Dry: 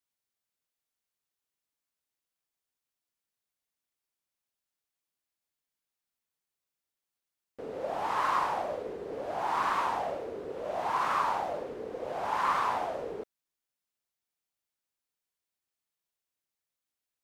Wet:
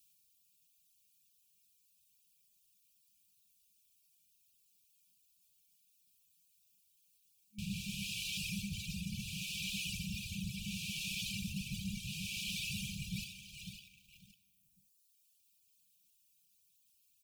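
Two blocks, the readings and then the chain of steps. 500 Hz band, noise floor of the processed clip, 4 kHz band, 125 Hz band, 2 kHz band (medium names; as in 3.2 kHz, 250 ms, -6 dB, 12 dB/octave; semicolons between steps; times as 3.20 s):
under -40 dB, -73 dBFS, +7.5 dB, +10.5 dB, -5.0 dB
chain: feedback delay 550 ms, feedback 32%, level -13.5 dB; waveshaping leveller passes 1; FFT band-reject 210–2300 Hz; treble shelf 6.9 kHz +8 dB; reverb removal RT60 1.5 s; reverse; compression 6:1, threshold -55 dBFS, peak gain reduction 15 dB; reverse; peaking EQ 200 Hz +5.5 dB 0.32 oct; trim +16 dB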